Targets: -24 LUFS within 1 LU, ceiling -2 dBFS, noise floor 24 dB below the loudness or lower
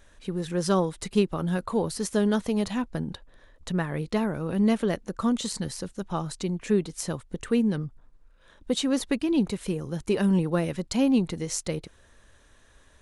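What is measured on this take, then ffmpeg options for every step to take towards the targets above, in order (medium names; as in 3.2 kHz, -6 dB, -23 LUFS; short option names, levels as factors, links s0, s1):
loudness -27.5 LUFS; peak level -10.0 dBFS; loudness target -24.0 LUFS
-> -af "volume=1.5"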